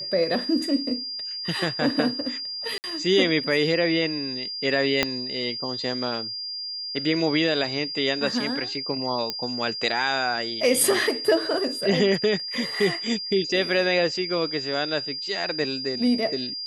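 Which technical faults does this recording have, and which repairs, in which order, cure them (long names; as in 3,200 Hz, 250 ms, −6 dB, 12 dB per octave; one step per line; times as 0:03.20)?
whistle 4,800 Hz −30 dBFS
0:02.78–0:02.84: drop-out 59 ms
0:05.03: click −5 dBFS
0:09.30: click −11 dBFS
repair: click removal
notch filter 4,800 Hz, Q 30
repair the gap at 0:02.78, 59 ms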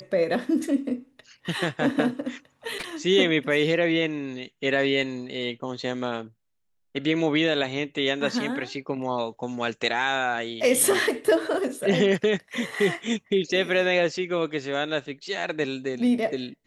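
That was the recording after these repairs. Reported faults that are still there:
0:05.03: click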